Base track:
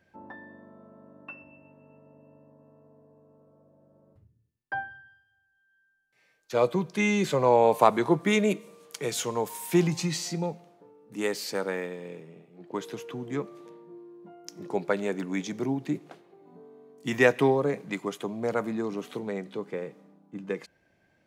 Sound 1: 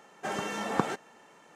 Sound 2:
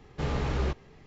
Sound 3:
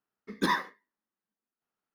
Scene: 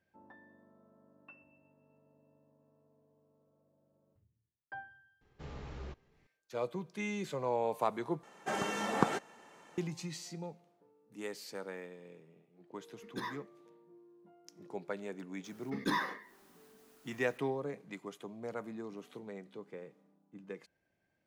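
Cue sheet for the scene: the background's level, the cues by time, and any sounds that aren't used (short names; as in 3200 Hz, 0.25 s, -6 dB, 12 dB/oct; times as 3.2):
base track -13 dB
5.21 add 2 -16.5 dB
8.23 replace with 1 -1.5 dB
12.74 add 3 -14 dB
15.44 add 3 -7 dB + fast leveller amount 50%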